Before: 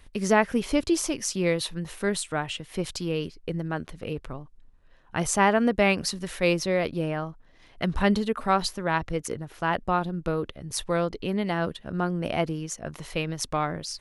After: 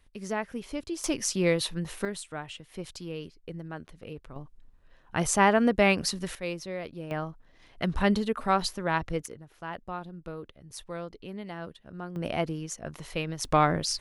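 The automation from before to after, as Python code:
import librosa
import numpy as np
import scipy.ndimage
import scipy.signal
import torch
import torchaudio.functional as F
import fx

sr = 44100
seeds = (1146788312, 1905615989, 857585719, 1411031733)

y = fx.gain(x, sr, db=fx.steps((0.0, -11.0), (1.04, 0.0), (2.05, -9.0), (4.36, -0.5), (6.35, -11.0), (7.11, -2.0), (9.26, -12.0), (12.16, -3.0), (13.45, 5.0)))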